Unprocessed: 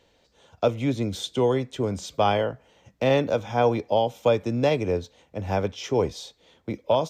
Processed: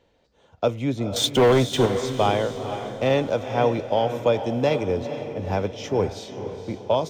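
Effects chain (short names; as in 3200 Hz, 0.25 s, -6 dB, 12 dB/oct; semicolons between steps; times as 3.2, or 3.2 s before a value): 1.16–1.86 sample leveller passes 3; diffused feedback echo 0.472 s, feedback 49%, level -9 dB; mismatched tape noise reduction decoder only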